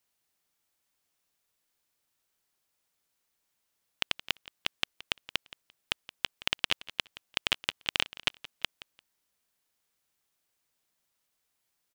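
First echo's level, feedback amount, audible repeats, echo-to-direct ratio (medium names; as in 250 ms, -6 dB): -17.5 dB, 21%, 2, -17.5 dB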